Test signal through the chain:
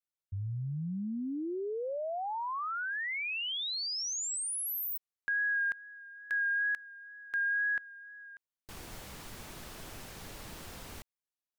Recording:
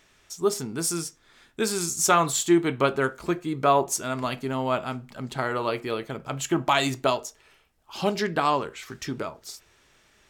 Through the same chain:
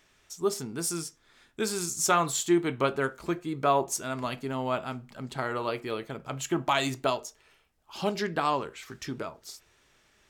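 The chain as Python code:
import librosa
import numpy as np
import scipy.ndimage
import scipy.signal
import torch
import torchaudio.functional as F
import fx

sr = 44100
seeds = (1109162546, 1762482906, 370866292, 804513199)

y = fx.wow_flutter(x, sr, seeds[0], rate_hz=2.1, depth_cents=24.0)
y = y * librosa.db_to_amplitude(-4.0)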